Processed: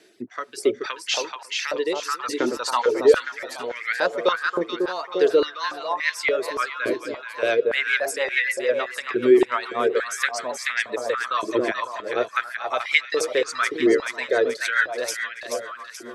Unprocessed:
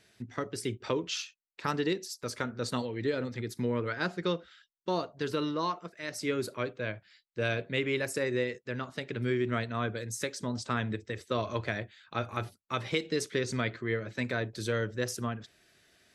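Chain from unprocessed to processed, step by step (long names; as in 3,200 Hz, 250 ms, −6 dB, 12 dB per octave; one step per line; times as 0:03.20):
rotating-speaker cabinet horn 0.65 Hz, later 7 Hz, at 0:04.84
reverb reduction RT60 1.3 s
echo with a time of its own for lows and highs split 1,100 Hz, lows 273 ms, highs 431 ms, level −6 dB
in parallel at +2 dB: brickwall limiter −25 dBFS, peak gain reduction 7.5 dB
on the sum: high-pass on a step sequencer 3.5 Hz 340–2,000 Hz
level +3 dB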